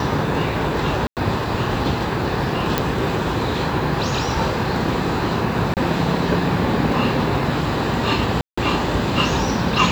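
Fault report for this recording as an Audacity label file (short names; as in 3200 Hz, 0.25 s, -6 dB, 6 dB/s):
1.070000	1.170000	gap 98 ms
2.780000	2.780000	pop -3 dBFS
5.740000	5.770000	gap 28 ms
8.410000	8.570000	gap 0.165 s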